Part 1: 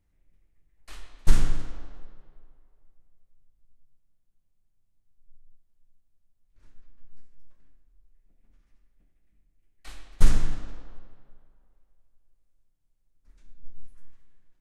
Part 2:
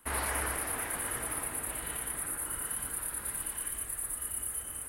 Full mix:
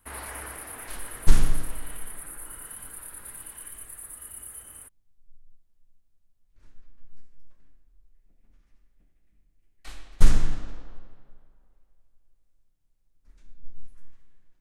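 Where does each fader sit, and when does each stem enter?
+1.5, −5.5 decibels; 0.00, 0.00 seconds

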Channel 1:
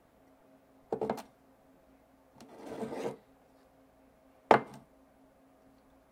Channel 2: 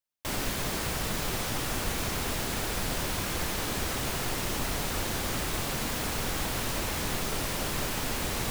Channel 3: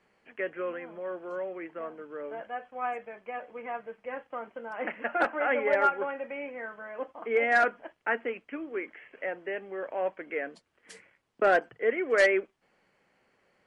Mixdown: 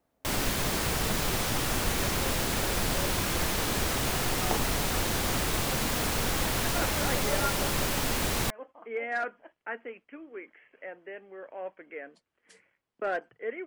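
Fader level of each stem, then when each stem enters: −11.0, +2.5, −8.0 decibels; 0.00, 0.00, 1.60 seconds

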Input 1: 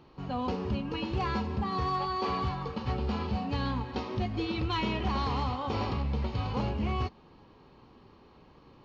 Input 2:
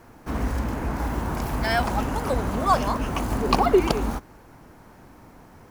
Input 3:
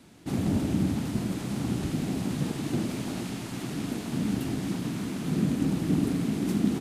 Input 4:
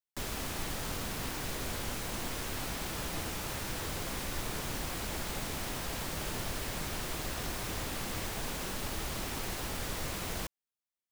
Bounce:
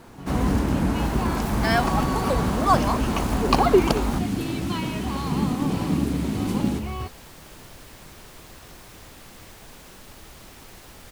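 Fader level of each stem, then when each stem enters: −0.5, +1.0, +1.5, −8.0 decibels; 0.00, 0.00, 0.00, 1.25 seconds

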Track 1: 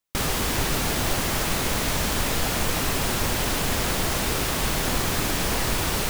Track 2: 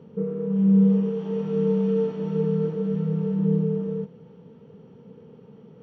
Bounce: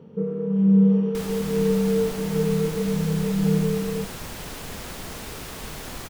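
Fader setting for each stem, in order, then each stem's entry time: −11.5, +1.0 decibels; 1.00, 0.00 seconds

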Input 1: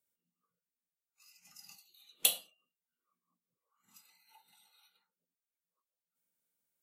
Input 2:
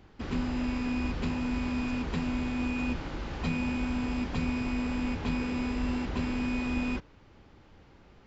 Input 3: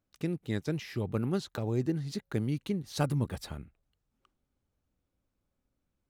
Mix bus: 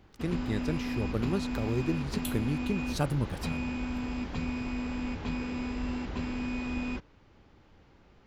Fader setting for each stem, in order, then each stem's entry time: −12.5, −3.0, 0.0 decibels; 0.00, 0.00, 0.00 seconds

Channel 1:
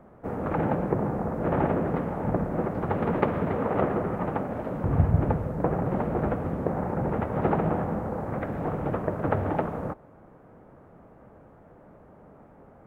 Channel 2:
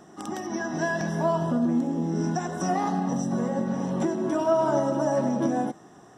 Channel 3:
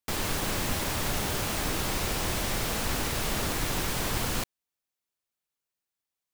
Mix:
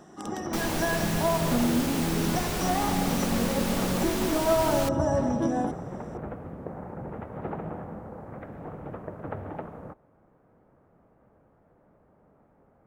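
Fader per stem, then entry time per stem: −10.0, −1.5, −2.5 decibels; 0.00, 0.00, 0.45 seconds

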